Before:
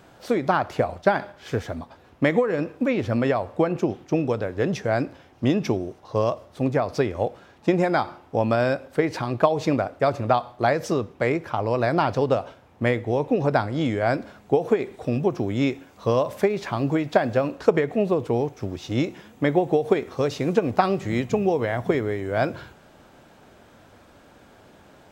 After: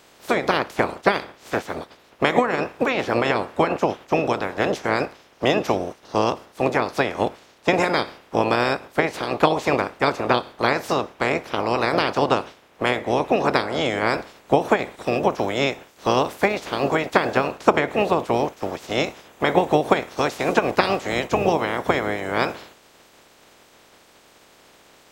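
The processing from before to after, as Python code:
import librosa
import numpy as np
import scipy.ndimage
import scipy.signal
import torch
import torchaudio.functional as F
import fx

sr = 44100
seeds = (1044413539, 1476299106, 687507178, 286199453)

y = fx.spec_clip(x, sr, under_db=25)
y = fx.peak_eq(y, sr, hz=450.0, db=8.5, octaves=2.4)
y = y * 10.0 ** (-3.5 / 20.0)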